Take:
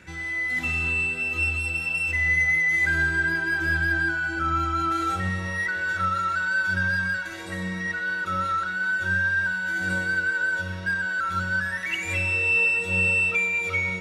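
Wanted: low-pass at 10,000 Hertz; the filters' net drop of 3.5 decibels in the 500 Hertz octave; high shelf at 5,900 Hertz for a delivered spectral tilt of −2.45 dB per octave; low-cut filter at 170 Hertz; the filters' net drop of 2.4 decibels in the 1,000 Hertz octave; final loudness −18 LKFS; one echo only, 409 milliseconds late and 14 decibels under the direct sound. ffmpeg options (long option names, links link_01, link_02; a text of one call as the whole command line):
ffmpeg -i in.wav -af "highpass=170,lowpass=10000,equalizer=frequency=500:width_type=o:gain=-3.5,equalizer=frequency=1000:width_type=o:gain=-4,highshelf=frequency=5900:gain=9,aecho=1:1:409:0.2,volume=5.5dB" out.wav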